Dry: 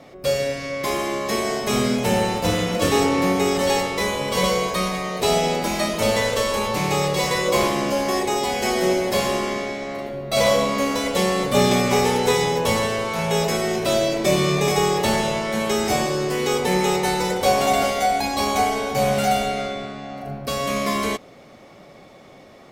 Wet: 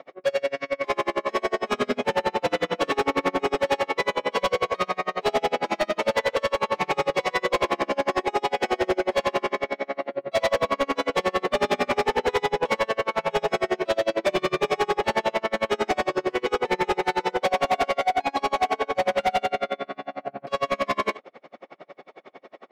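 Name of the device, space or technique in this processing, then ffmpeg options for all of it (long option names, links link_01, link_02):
helicopter radio: -af "highpass=380,lowpass=2600,aeval=exprs='val(0)*pow(10,-36*(0.5-0.5*cos(2*PI*11*n/s))/20)':channel_layout=same,asoftclip=type=hard:threshold=-25dB,volume=8dB"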